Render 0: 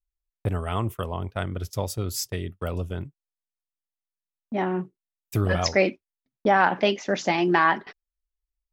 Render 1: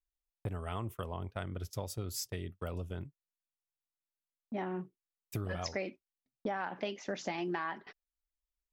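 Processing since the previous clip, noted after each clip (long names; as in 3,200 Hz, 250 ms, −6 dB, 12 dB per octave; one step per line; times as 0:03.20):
downward compressor 6 to 1, threshold −25 dBFS, peak gain reduction 11 dB
level −8 dB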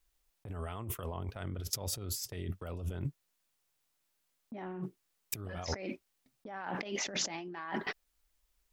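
compressor whose output falls as the input rises −47 dBFS, ratio −1
level +7.5 dB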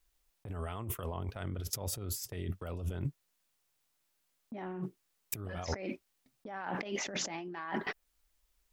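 dynamic equaliser 4,600 Hz, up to −5 dB, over −50 dBFS, Q 0.97
level +1 dB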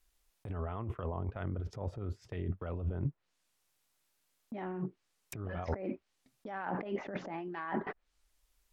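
treble cut that deepens with the level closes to 1,200 Hz, closed at −34 dBFS
level +1.5 dB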